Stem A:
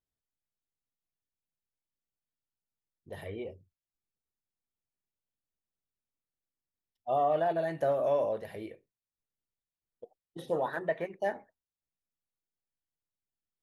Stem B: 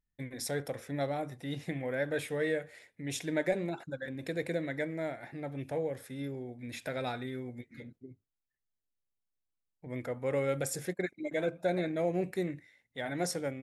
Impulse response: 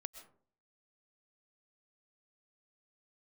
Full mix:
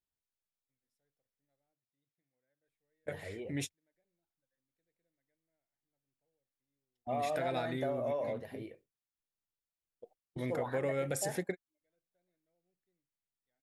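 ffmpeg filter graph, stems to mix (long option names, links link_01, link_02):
-filter_complex "[0:a]volume=-4.5dB,asplit=3[link_01][link_02][link_03];[link_01]atrim=end=1.73,asetpts=PTS-STARTPTS,afade=type=out:start_time=1.726:duration=0.004:curve=hsin[link_04];[link_02]atrim=start=1.73:end=2.67,asetpts=PTS-STARTPTS,volume=0[link_05];[link_03]atrim=start=2.67,asetpts=PTS-STARTPTS,afade=type=in:duration=0.004:curve=hsin[link_06];[link_04][link_05][link_06]concat=n=3:v=0:a=1,asplit=2[link_07][link_08];[1:a]adelay=500,volume=2.5dB[link_09];[link_08]apad=whole_len=622693[link_10];[link_09][link_10]sidechaingate=range=-55dB:threshold=-60dB:ratio=16:detection=peak[link_11];[link_07][link_11]amix=inputs=2:normalize=0,acompressor=threshold=-31dB:ratio=4"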